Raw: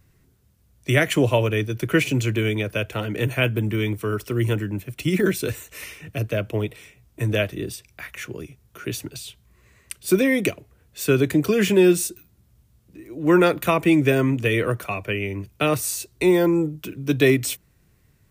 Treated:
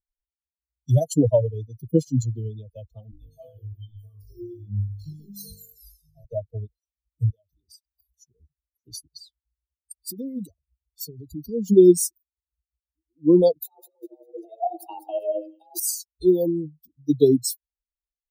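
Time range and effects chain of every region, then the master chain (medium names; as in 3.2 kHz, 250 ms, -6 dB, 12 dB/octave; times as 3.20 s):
3.11–6.25 s: compression 2:1, threshold -27 dBFS + flutter echo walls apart 3.4 m, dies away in 1.4 s + Shepard-style flanger falling 1.4 Hz
7.30–8.15 s: treble shelf 3.1 kHz +6.5 dB + compression, threshold -32 dBFS
9.97–11.68 s: bass shelf 89 Hz +12 dB + compression 12:1, threshold -19 dBFS + comb of notches 830 Hz
13.64–15.80 s: compressor with a negative ratio -25 dBFS, ratio -0.5 + frequency shift +220 Hz + two-band feedback delay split 910 Hz, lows 85 ms, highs 199 ms, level -4 dB
whole clip: expander on every frequency bin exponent 3; elliptic band-stop 680–4600 Hz, stop band 50 dB; trim +7 dB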